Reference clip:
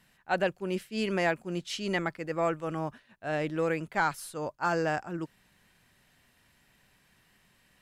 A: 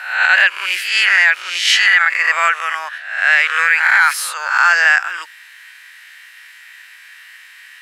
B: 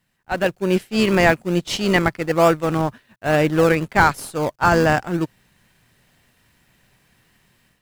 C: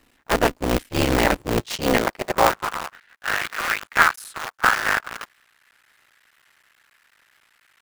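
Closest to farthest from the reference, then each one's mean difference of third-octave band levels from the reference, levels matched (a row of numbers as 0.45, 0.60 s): B, C, A; 5.0, 11.0, 14.5 dB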